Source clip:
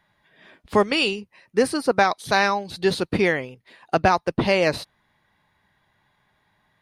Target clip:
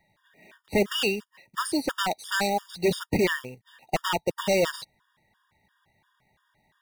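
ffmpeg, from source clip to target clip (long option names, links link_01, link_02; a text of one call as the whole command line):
ffmpeg -i in.wav -af "aeval=exprs='0.178*(abs(mod(val(0)/0.178+3,4)-2)-1)':channel_layout=same,acrusher=bits=3:mode=log:mix=0:aa=0.000001,afftfilt=real='re*gt(sin(2*PI*2.9*pts/sr)*(1-2*mod(floor(b*sr/1024/940),2)),0)':imag='im*gt(sin(2*PI*2.9*pts/sr)*(1-2*mod(floor(b*sr/1024/940),2)),0)':win_size=1024:overlap=0.75" out.wav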